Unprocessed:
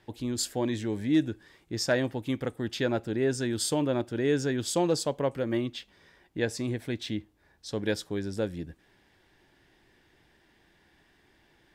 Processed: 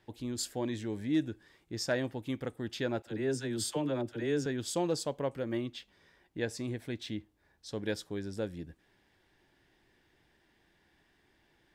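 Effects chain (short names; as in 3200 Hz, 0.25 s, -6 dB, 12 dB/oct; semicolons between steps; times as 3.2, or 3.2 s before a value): 3.02–4.46 dispersion lows, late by 47 ms, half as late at 550 Hz; gain -5.5 dB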